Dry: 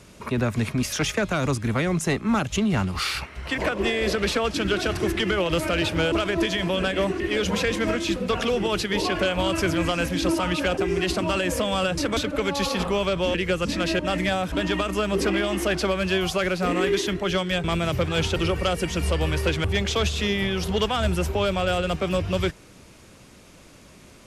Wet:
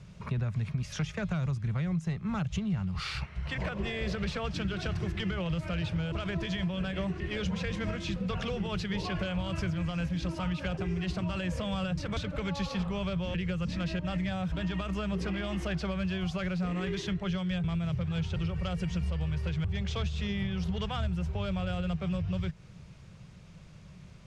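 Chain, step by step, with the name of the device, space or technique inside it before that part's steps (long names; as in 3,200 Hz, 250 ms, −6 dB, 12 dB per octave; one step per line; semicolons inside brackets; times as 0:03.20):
jukebox (low-pass filter 5,800 Hz 12 dB per octave; low shelf with overshoot 210 Hz +8.5 dB, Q 3; downward compressor, threshold −20 dBFS, peak gain reduction 12 dB)
level −8.5 dB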